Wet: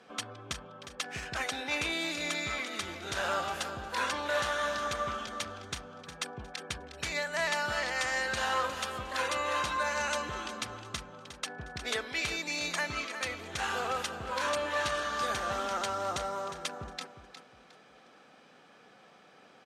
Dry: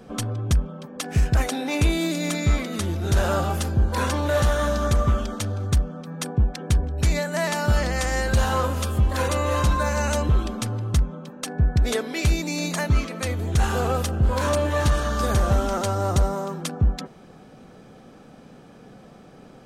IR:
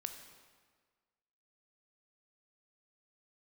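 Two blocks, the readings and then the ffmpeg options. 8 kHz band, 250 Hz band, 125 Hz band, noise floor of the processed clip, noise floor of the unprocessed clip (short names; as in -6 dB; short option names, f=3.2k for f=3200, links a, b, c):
-7.5 dB, -16.5 dB, -25.5 dB, -58 dBFS, -48 dBFS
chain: -af "bandpass=f=2.4k:t=q:w=0.63:csg=0,aecho=1:1:359|718|1077:0.282|0.0817|0.0237,volume=-1.5dB"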